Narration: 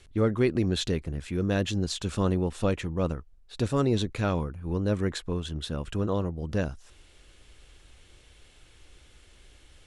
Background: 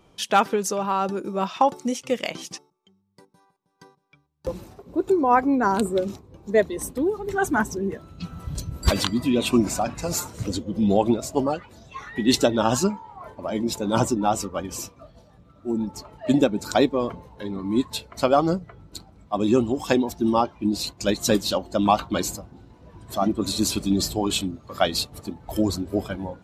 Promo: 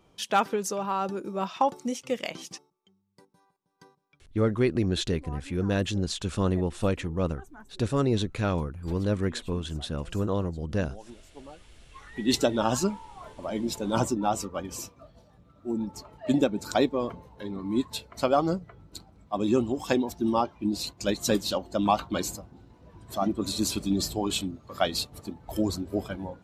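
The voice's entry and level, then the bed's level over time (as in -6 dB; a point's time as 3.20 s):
4.20 s, 0.0 dB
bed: 4.10 s -5 dB
4.40 s -27 dB
11.27 s -27 dB
12.34 s -4.5 dB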